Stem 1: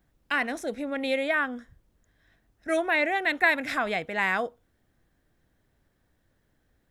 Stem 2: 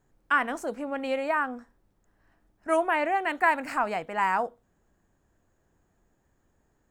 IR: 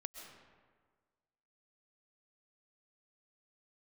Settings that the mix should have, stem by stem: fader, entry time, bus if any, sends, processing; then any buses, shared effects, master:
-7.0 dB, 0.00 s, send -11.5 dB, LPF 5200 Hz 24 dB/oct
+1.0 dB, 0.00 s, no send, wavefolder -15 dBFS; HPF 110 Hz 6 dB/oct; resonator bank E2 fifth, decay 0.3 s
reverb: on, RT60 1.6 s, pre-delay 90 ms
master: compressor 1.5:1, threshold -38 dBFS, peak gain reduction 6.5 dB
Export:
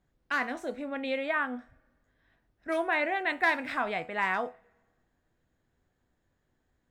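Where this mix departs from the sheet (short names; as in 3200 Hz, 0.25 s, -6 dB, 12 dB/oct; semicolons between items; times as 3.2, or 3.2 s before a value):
stem 1: send -11.5 dB -> -20.5 dB; master: missing compressor 1.5:1, threshold -38 dBFS, peak gain reduction 6.5 dB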